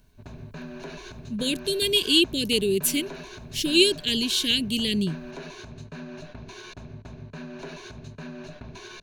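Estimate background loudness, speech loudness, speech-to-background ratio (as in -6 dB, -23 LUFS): -41.0 LUFS, -22.5 LUFS, 18.5 dB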